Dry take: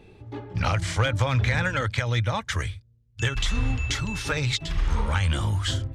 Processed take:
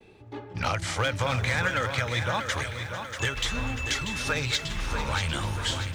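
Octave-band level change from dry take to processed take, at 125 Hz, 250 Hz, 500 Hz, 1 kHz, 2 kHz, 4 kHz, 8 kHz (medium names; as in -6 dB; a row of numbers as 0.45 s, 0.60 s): -6.5 dB, -3.5 dB, -0.5 dB, +0.5 dB, +0.5 dB, +0.5 dB, +1.0 dB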